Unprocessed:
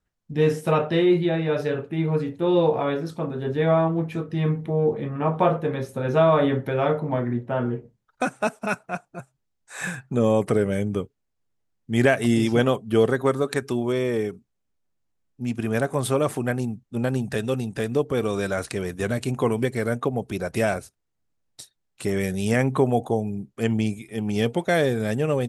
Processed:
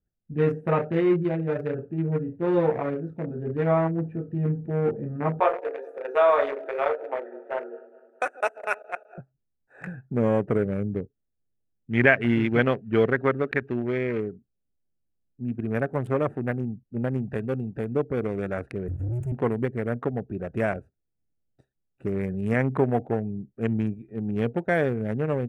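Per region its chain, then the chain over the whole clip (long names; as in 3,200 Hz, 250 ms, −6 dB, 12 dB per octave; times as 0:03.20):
0:05.40–0:09.18: feedback delay that plays each chunk backwards 104 ms, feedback 69%, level −12.5 dB + Butterworth high-pass 400 Hz + parametric band 9,800 Hz +11 dB 2.9 octaves
0:11.91–0:14.20: one scale factor per block 5 bits + drawn EQ curve 1,100 Hz 0 dB, 2,100 Hz +8 dB, 3,400 Hz +6 dB, 5,700 Hz −5 dB, 8,600 Hz −14 dB
0:18.88–0:19.32: Chebyshev band-stop filter 140–6,700 Hz, order 5 + parametric band 290 Hz −14 dB 0.33 octaves + leveller curve on the samples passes 5
whole clip: adaptive Wiener filter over 41 samples; high shelf with overshoot 2,900 Hz −11.5 dB, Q 1.5; level −2 dB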